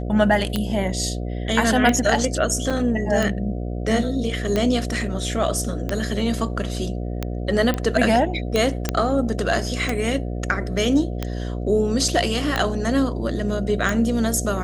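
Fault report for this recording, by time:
buzz 60 Hz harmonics 12 -27 dBFS
tick 45 rpm -9 dBFS
2.7 gap 4.9 ms
7.74 pop -10 dBFS
8.89 pop -6 dBFS

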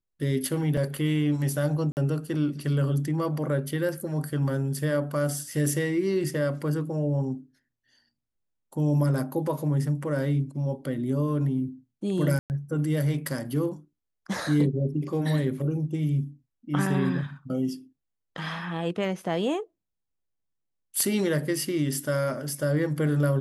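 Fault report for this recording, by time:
0.77 gap 3.6 ms
1.92–1.97 gap 49 ms
12.39–12.5 gap 0.109 s

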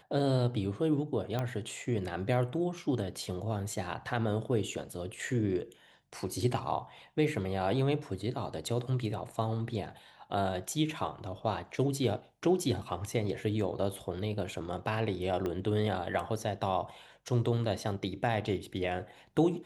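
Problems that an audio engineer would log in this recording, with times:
1.39 pop -20 dBFS
15.46 pop -22 dBFS

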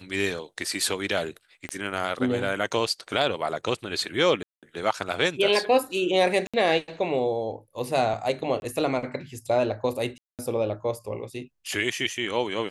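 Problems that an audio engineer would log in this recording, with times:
1.69 pop -18 dBFS
4.43–4.63 gap 0.197 s
6.47–6.54 gap 66 ms
8.6–8.62 gap 21 ms
10.18–10.39 gap 0.208 s

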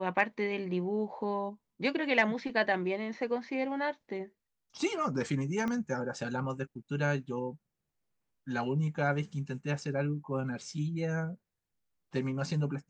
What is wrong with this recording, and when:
5.68 pop -22 dBFS

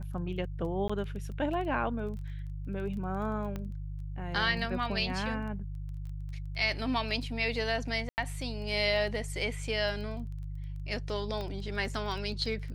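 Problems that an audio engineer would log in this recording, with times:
crackle 14/s -40 dBFS
hum 50 Hz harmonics 3 -38 dBFS
0.88–0.9 gap 15 ms
3.56 pop -24 dBFS
8.09–8.18 gap 89 ms
11.41 pop -25 dBFS

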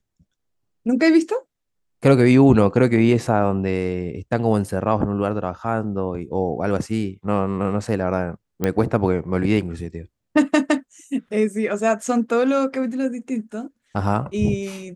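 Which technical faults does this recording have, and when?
8.64 pop -8 dBFS

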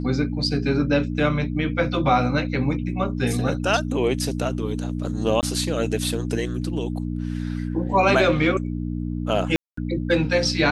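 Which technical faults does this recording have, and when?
hum 60 Hz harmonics 5 -27 dBFS
5.41–5.43 gap 18 ms
9.56–9.77 gap 0.214 s

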